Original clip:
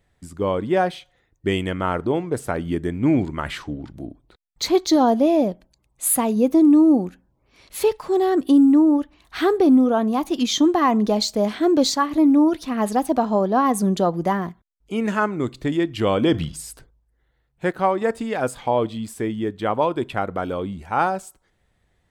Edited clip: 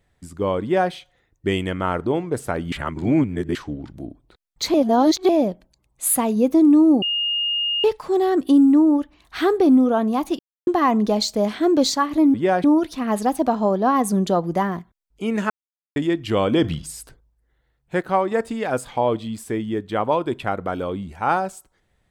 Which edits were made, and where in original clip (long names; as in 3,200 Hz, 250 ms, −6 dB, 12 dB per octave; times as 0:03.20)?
0:00.62–0:00.92: duplicate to 0:12.34
0:02.72–0:03.55: reverse
0:04.74–0:05.29: reverse
0:07.02–0:07.84: beep over 2,840 Hz −19.5 dBFS
0:10.39–0:10.67: silence
0:15.20–0:15.66: silence